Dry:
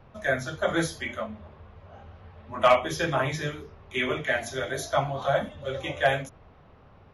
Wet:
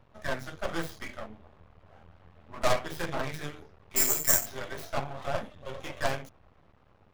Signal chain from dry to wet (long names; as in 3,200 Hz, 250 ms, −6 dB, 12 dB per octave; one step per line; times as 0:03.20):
stylus tracing distortion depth 0.33 ms
half-wave rectification
0:03.96–0:04.46: bad sample-rate conversion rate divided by 6×, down filtered, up zero stuff
level −4 dB